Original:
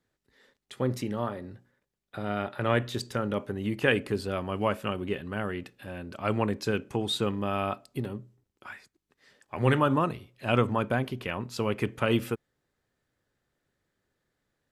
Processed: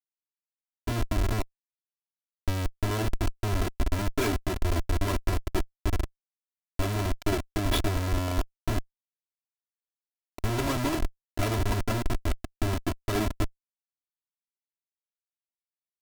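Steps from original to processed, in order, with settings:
high-pass filter 54 Hz 6 dB per octave
in parallel at −8 dB: wrap-around overflow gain 17.5 dB
on the sum: low-shelf EQ 230 Hz +10 dB
comparator with hysteresis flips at −22.5 dBFS
wrong playback speed 48 kHz file played as 44.1 kHz
comb filter 3 ms, depth 93%
expander for the loud parts 1.5 to 1, over −34 dBFS

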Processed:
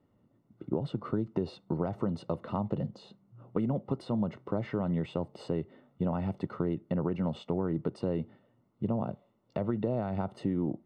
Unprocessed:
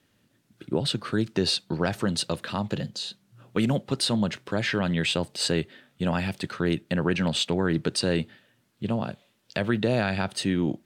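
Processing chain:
downward compressor, threshold −26 dBFS, peak gain reduction 7.5 dB
Savitzky-Golay smoothing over 65 samples

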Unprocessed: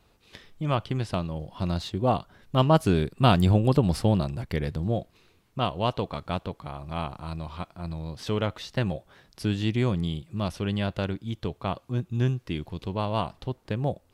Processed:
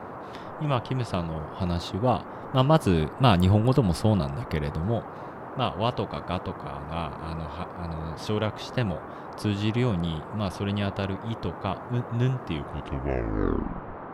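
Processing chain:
turntable brake at the end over 1.63 s
noise in a band 82–1,200 Hz −39 dBFS

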